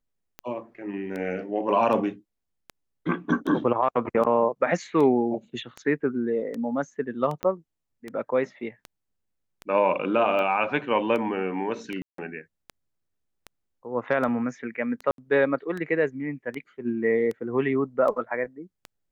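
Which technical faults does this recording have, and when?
tick 78 rpm -21 dBFS
7.43 pop -15 dBFS
12.02–12.18 gap 0.163 s
15.11–15.18 gap 72 ms

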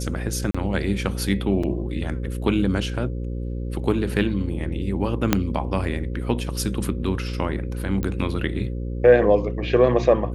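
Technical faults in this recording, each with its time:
buzz 60 Hz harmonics 9 -28 dBFS
0.51–0.55 gap 35 ms
1.63 gap 4.6 ms
5.33 pop -2 dBFS
8.03 pop -14 dBFS

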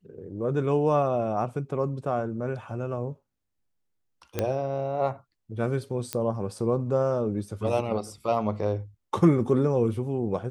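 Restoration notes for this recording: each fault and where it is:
4.39 pop -12 dBFS
6.13 pop -12 dBFS

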